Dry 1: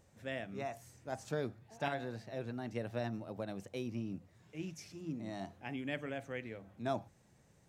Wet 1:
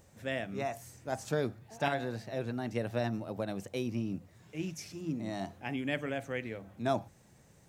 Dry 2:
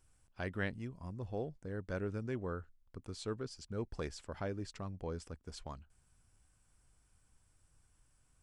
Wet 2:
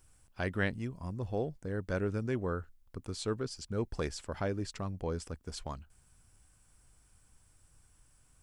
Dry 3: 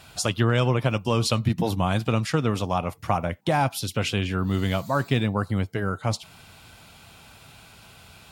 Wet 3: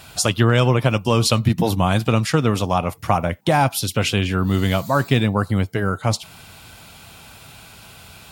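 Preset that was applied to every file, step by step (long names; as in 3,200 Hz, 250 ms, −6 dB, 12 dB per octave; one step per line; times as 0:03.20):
high-shelf EQ 9,600 Hz +6 dB
level +5.5 dB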